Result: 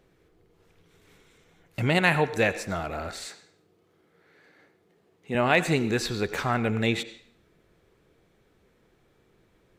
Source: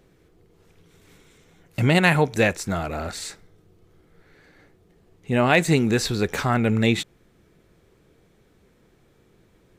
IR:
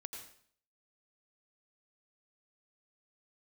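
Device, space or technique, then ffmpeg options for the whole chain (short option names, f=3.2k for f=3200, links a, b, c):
filtered reverb send: -filter_complex "[0:a]asettb=1/sr,asplit=3[a][b][c];[a]atrim=end=3.264[d];[b]atrim=start=3.26:end=5.35,asetpts=PTS-STARTPTS,afade=t=in:d=0.004:c=qsin,afade=t=out:st=2.086:d=0.004:c=qsin,highpass=160[e];[c]atrim=start=5.346[f];[d][e]acrossfade=d=0.004:c1=hsin:c2=qsin[g];[g][f]acrossfade=d=0.004:c1=qsin:c2=hsin,asplit=2[h][i];[i]highpass=320,lowpass=5.3k[j];[1:a]atrim=start_sample=2205[k];[j][k]afir=irnorm=-1:irlink=0,volume=-2.5dB[l];[h][l]amix=inputs=2:normalize=0,volume=-6dB"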